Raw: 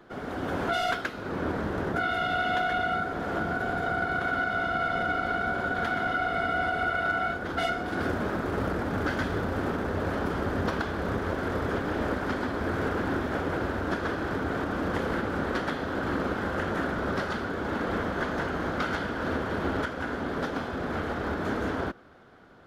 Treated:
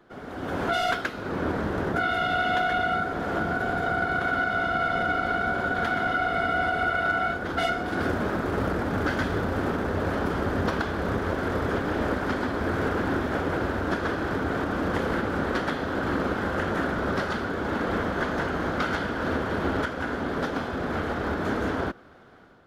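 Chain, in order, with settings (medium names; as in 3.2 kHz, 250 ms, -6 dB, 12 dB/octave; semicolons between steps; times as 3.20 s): level rider gain up to 6.5 dB; trim -4 dB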